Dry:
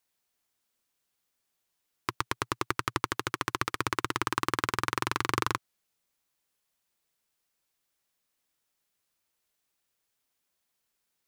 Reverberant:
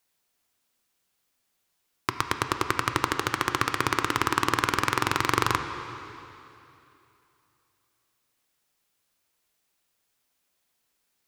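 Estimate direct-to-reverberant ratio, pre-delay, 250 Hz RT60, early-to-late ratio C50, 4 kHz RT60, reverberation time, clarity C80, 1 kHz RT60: 6.5 dB, 6 ms, 2.9 s, 7.5 dB, 2.7 s, 2.9 s, 8.5 dB, 2.8 s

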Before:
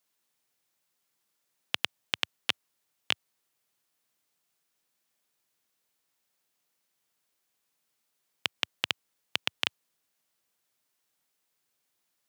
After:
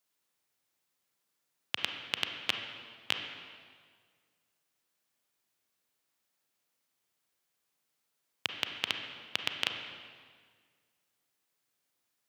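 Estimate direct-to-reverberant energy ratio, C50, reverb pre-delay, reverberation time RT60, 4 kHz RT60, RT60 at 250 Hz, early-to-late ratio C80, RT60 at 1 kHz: 4.0 dB, 5.0 dB, 30 ms, 1.8 s, 1.5 s, 1.9 s, 6.5 dB, 1.7 s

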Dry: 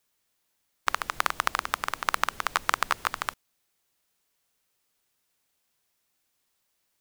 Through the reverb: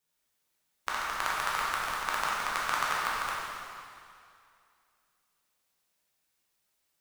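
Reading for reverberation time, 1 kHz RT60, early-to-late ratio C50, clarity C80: 2.4 s, 2.4 s, -2.5 dB, -0.5 dB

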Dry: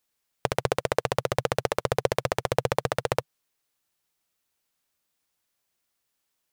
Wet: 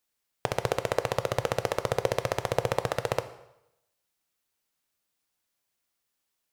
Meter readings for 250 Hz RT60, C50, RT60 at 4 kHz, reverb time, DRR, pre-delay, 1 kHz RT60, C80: 0.85 s, 13.5 dB, 0.75 s, 0.85 s, 10.5 dB, 9 ms, 0.85 s, 16.0 dB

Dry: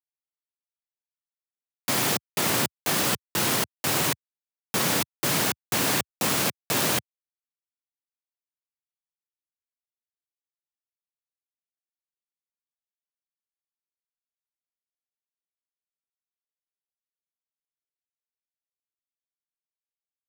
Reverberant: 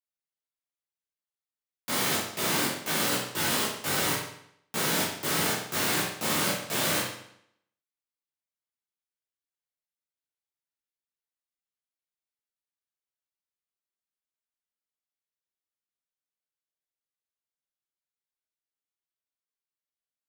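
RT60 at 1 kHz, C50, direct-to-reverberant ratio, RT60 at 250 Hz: 0.70 s, 3.0 dB, -8.0 dB, 0.75 s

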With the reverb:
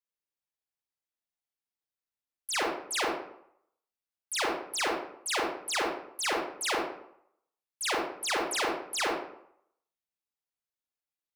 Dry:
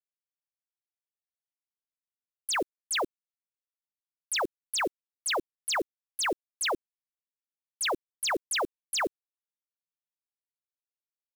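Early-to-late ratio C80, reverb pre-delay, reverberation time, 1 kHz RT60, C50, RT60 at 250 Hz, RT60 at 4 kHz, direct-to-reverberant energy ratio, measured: 5.0 dB, 30 ms, 0.70 s, 0.70 s, 1.0 dB, 0.65 s, 0.45 s, -3.5 dB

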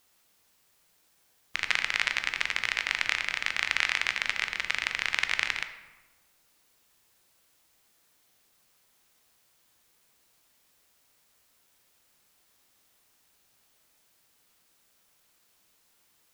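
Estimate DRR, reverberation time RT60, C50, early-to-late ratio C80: 7.5 dB, 1.2 s, 10.0 dB, 12.0 dB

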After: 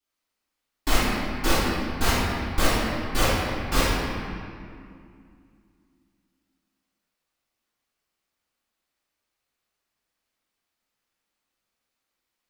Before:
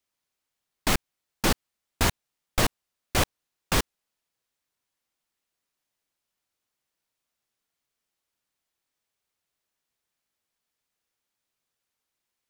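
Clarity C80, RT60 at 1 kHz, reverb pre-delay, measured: -1.0 dB, 2.3 s, 3 ms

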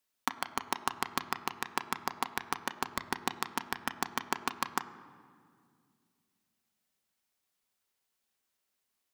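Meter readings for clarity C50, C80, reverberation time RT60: 14.0 dB, 15.0 dB, 2.2 s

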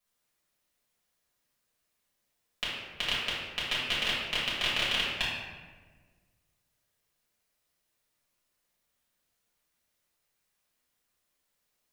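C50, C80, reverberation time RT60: -0.5 dB, 2.0 dB, 1.4 s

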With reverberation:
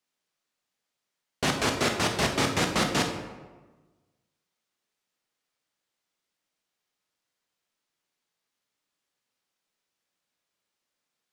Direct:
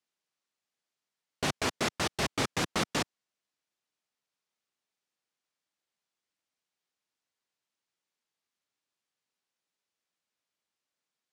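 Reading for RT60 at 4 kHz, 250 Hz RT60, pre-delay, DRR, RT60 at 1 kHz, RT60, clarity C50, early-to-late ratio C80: 0.75 s, 1.4 s, 16 ms, 3.0 dB, 1.2 s, 1.3 s, 6.0 dB, 8.0 dB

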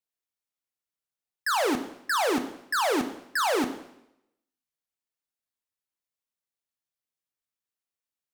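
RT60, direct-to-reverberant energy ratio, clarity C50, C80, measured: 0.80 s, 7.5 dB, 11.5 dB, 13.5 dB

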